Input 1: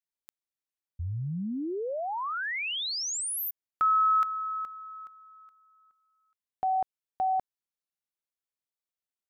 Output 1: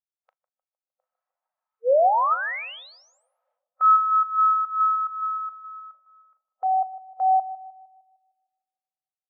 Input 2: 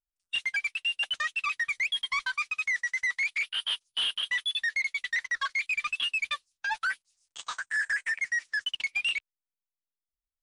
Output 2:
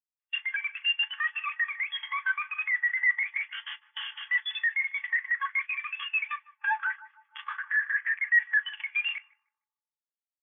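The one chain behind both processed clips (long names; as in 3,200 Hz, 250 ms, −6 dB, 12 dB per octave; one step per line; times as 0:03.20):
compressor on every frequency bin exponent 0.4
downward expander −37 dBFS
high-shelf EQ 2,600 Hz −10 dB
downward compressor 12 to 1, threshold −32 dBFS
linear-phase brick-wall high-pass 480 Hz
high-frequency loss of the air 78 metres
double-tracking delay 39 ms −11 dB
feedback echo with a low-pass in the loop 153 ms, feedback 80%, low-pass 1,500 Hz, level −6 dB
every bin expanded away from the loudest bin 2.5 to 1
level +6 dB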